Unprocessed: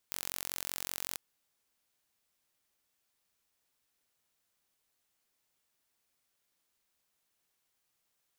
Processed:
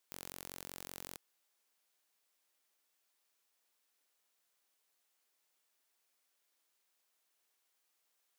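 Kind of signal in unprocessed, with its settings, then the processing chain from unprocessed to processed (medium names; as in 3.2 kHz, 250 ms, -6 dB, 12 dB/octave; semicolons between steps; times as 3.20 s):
pulse train 45.3 per s, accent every 0, -10 dBFS 1.06 s
high-pass 340 Hz 12 dB/octave; overload inside the chain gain 21.5 dB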